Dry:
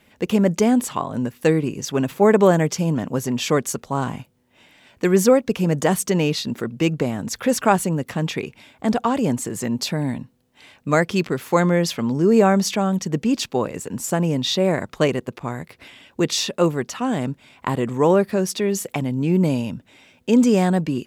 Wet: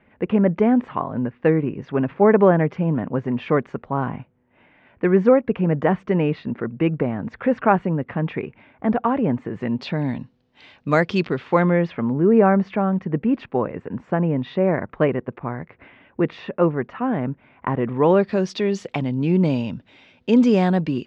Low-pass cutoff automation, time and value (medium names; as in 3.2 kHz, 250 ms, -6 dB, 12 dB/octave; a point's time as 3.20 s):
low-pass 24 dB/octave
9.46 s 2.2 kHz
10.20 s 4.7 kHz
11.15 s 4.7 kHz
11.98 s 2.1 kHz
17.76 s 2.1 kHz
18.24 s 4.6 kHz